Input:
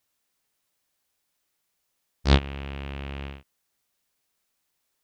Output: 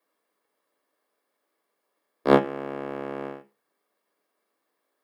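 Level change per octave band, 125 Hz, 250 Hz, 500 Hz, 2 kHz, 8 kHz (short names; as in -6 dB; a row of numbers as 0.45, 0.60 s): -10.5 dB, +4.5 dB, +11.0 dB, +0.5 dB, n/a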